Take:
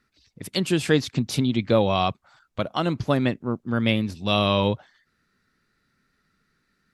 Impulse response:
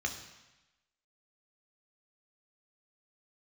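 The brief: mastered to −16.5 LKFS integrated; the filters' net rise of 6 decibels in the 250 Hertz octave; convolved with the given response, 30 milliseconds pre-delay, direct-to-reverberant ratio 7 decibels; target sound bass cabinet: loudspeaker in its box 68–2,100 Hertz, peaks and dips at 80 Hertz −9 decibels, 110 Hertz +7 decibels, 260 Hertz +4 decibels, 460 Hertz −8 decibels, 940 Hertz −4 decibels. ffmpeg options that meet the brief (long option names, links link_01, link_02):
-filter_complex "[0:a]equalizer=frequency=250:width_type=o:gain=5,asplit=2[link_01][link_02];[1:a]atrim=start_sample=2205,adelay=30[link_03];[link_02][link_03]afir=irnorm=-1:irlink=0,volume=-11dB[link_04];[link_01][link_04]amix=inputs=2:normalize=0,highpass=frequency=68:width=0.5412,highpass=frequency=68:width=1.3066,equalizer=frequency=80:width_type=q:width=4:gain=-9,equalizer=frequency=110:width_type=q:width=4:gain=7,equalizer=frequency=260:width_type=q:width=4:gain=4,equalizer=frequency=460:width_type=q:width=4:gain=-8,equalizer=frequency=940:width_type=q:width=4:gain=-4,lowpass=frequency=2100:width=0.5412,lowpass=frequency=2100:width=1.3066,volume=4dB"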